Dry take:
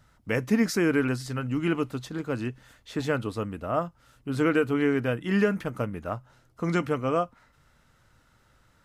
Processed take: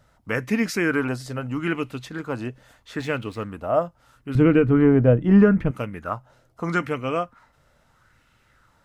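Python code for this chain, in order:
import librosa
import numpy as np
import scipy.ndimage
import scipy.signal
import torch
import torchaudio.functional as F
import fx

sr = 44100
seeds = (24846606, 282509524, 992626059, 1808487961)

y = fx.backlash(x, sr, play_db=-47.0, at=(2.99, 3.51))
y = fx.tilt_eq(y, sr, slope=-4.5, at=(4.35, 5.71))
y = fx.bell_lfo(y, sr, hz=0.78, low_hz=560.0, high_hz=2700.0, db=9)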